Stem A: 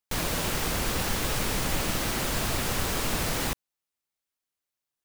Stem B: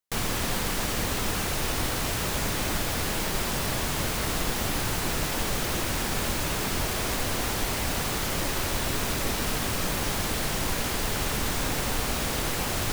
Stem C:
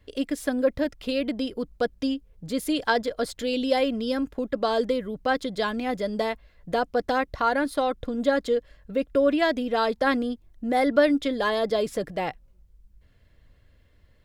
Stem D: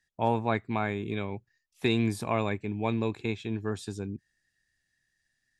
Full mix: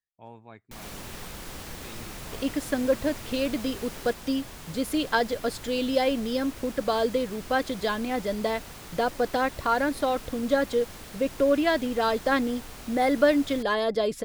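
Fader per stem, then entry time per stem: −14.5, −15.0, −1.0, −20.0 decibels; 0.60, 0.70, 2.25, 0.00 seconds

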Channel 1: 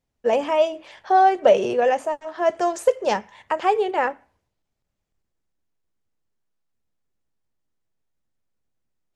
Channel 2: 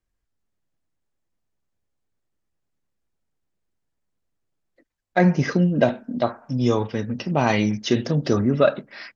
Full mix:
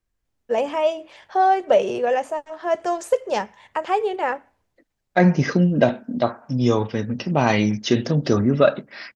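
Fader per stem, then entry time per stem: −1.5, +1.5 decibels; 0.25, 0.00 seconds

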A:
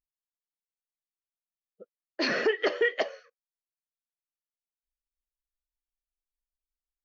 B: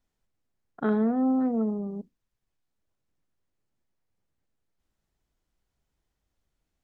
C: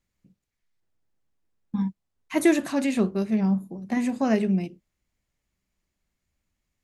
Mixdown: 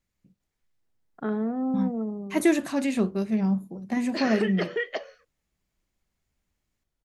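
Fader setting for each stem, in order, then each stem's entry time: −3.5, −3.5, −1.5 decibels; 1.95, 0.40, 0.00 seconds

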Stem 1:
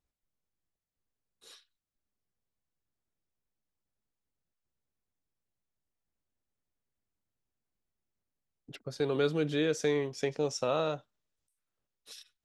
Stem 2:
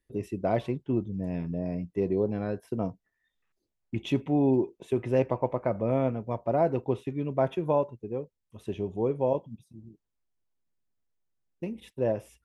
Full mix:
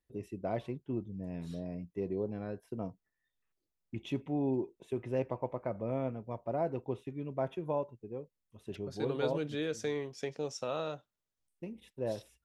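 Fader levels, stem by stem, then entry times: −6.0, −8.5 decibels; 0.00, 0.00 seconds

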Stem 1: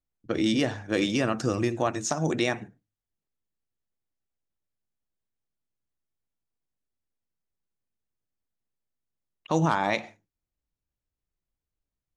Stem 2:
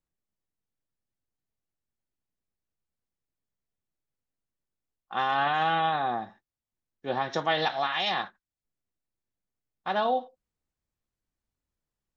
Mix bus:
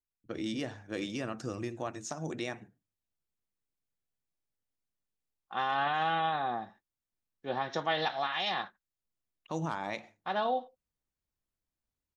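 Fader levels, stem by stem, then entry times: −11.0, −4.5 decibels; 0.00, 0.40 seconds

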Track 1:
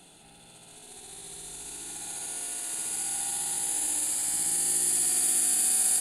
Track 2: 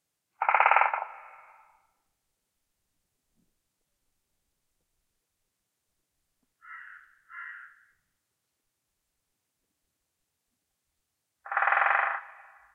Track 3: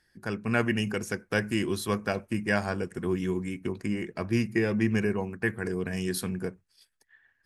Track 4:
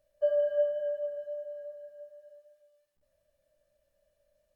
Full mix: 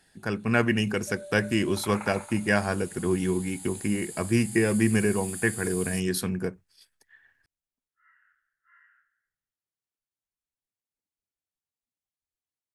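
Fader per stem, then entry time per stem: −13.0, −18.0, +3.0, −16.5 decibels; 0.00, 1.35, 0.00, 0.85 seconds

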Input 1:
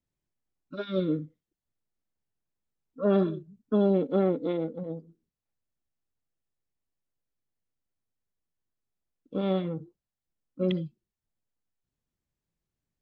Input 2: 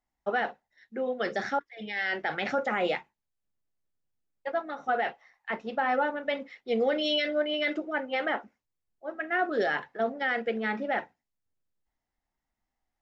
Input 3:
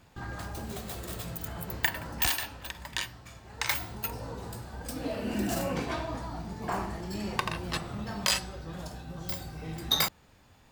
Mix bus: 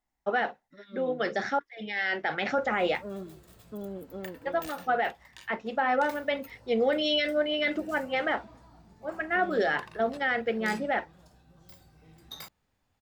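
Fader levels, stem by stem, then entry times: −15.5, +1.0, −17.5 decibels; 0.00, 0.00, 2.40 seconds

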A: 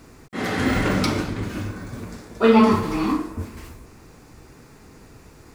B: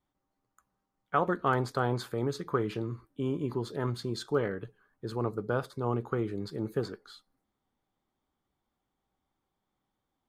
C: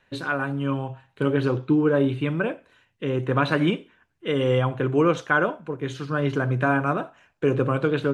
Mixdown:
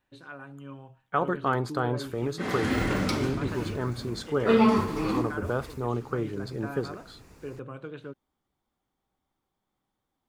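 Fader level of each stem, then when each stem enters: −6.0, +1.0, −17.5 decibels; 2.05, 0.00, 0.00 seconds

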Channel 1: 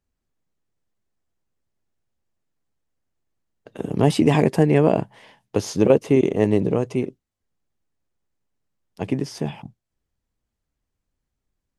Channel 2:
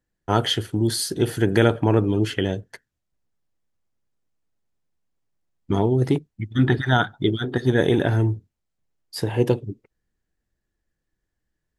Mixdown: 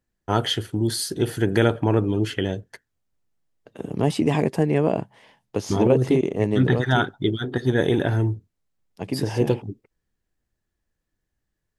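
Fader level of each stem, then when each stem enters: −4.0, −1.5 decibels; 0.00, 0.00 seconds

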